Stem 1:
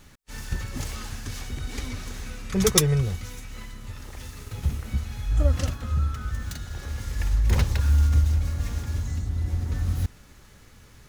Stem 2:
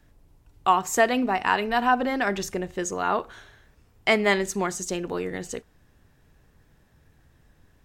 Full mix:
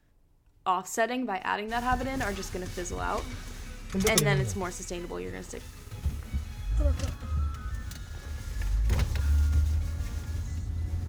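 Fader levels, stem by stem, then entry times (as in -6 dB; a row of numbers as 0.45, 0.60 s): -5.5, -7.0 dB; 1.40, 0.00 s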